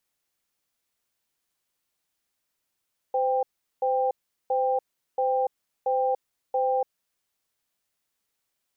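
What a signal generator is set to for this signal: cadence 514 Hz, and 792 Hz, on 0.29 s, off 0.39 s, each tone -24 dBFS 4.04 s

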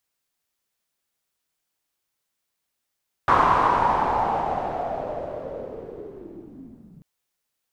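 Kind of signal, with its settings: swept filtered noise white, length 3.74 s lowpass, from 1100 Hz, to 170 Hz, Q 5.4, linear, gain ramp -24 dB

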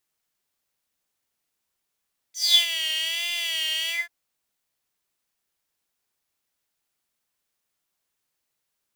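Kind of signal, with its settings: synth patch with vibrato E5, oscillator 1 square, sub -3.5 dB, noise -12 dB, filter highpass, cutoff 1600 Hz, Q 10, filter envelope 2 oct, filter decay 0.28 s, attack 0.202 s, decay 0.12 s, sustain -9 dB, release 0.18 s, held 1.56 s, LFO 1.3 Hz, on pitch 76 cents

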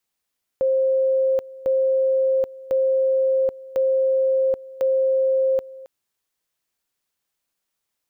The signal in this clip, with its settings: two-level tone 529 Hz -16 dBFS, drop 20 dB, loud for 0.78 s, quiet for 0.27 s, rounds 5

